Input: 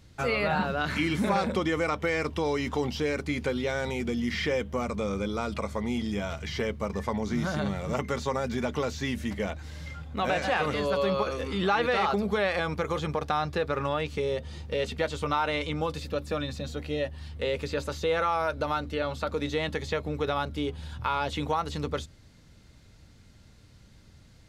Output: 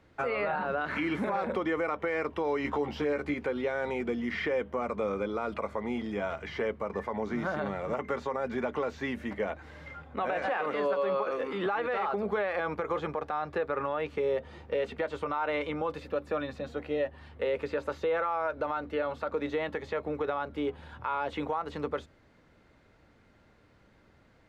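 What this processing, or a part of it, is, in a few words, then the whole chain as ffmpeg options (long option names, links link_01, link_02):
DJ mixer with the lows and highs turned down: -filter_complex "[0:a]asettb=1/sr,asplit=3[link_01][link_02][link_03];[link_01]atrim=end=2.634[link_04];[link_02]atrim=start=2.63:end=3.34,asetpts=PTS-STARTPTS,afade=type=in:duration=0.004:curve=qsin,afade=type=out:start_time=0.706:duration=0.004:curve=qsin,asplit=2[link_05][link_06];[link_06]adelay=14,volume=-2dB[link_07];[link_05][link_07]amix=inputs=2:normalize=0,atrim=end_sample=31311[link_08];[link_03]atrim=start=3.336[link_09];[link_04][link_08]acrossfade=duration=0.004:curve1=hsin:curve2=qsin[link_10];[link_10][link_09]acrossfade=duration=0.004:curve1=qsin:curve2=hsin,asettb=1/sr,asplit=3[link_11][link_12][link_13];[link_11]atrim=end=10.464[link_14];[link_12]atrim=start=10.46:end=11.66,asetpts=PTS-STARTPTS,afade=type=in:duration=0.004:curve=qsin,afade=type=out:start_time=1.196:duration=0.004:curve=qsin,highpass=170[link_15];[link_13]atrim=start=11.656[link_16];[link_14][link_15]acrossfade=duration=0.004:curve1=hsin:curve2=qsin[link_17];[link_17][link_16]acrossfade=duration=0.004:curve1=qsin:curve2=hsin,acrossover=split=280 2300:gain=0.2 1 0.112[link_18][link_19][link_20];[link_18][link_19][link_20]amix=inputs=3:normalize=0,alimiter=limit=-24dB:level=0:latency=1:release=103,volume=2.5dB"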